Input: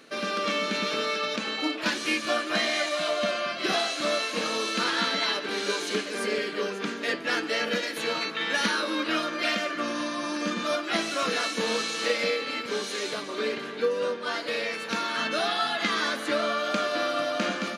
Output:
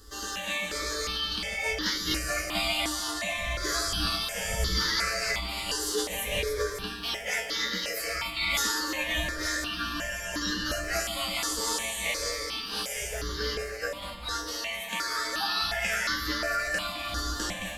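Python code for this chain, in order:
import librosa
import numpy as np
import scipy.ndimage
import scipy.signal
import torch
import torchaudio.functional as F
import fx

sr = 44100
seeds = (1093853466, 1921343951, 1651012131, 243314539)

y = fx.dmg_wind(x, sr, seeds[0], corner_hz=100.0, level_db=-39.0)
y = fx.high_shelf(y, sr, hz=3400.0, db=11.5)
y = fx.comb_fb(y, sr, f0_hz=61.0, decay_s=0.36, harmonics='odd', damping=0.0, mix_pct=90)
y = fx.echo_alternate(y, sr, ms=144, hz=840.0, feedback_pct=68, wet_db=-8.0)
y = fx.formant_shift(y, sr, semitones=3)
y = fx.phaser_held(y, sr, hz=2.8, low_hz=630.0, high_hz=2500.0)
y = y * librosa.db_to_amplitude(7.5)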